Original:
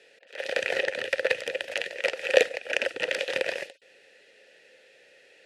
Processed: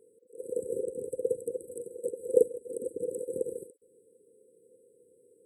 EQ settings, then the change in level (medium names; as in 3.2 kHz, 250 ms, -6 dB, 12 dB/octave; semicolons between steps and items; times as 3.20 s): brick-wall FIR band-stop 520–7700 Hz; +2.5 dB